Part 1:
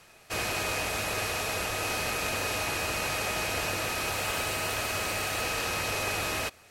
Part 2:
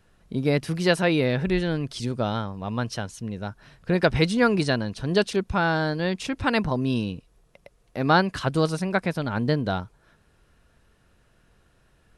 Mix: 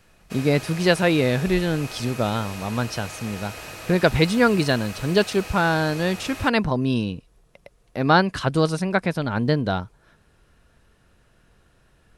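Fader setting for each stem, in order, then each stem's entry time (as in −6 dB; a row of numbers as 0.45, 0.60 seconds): −7.0, +2.5 decibels; 0.00, 0.00 seconds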